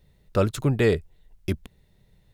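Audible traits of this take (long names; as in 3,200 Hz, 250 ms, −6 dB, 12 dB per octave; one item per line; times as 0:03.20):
background noise floor −62 dBFS
spectral slope −6.5 dB per octave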